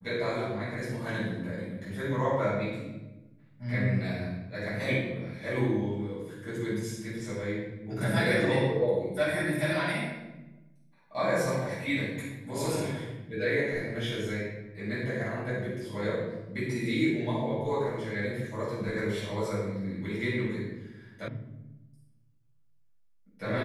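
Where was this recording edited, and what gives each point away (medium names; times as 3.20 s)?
21.28 s: sound stops dead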